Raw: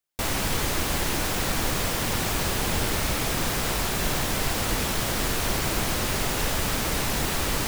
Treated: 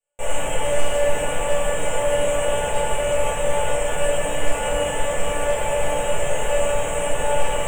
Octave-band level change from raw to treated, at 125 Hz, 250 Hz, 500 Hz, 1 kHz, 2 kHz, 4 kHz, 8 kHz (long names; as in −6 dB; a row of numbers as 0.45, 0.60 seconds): −3.5, −5.0, +12.0, +5.0, +1.0, −3.0, 0.0 decibels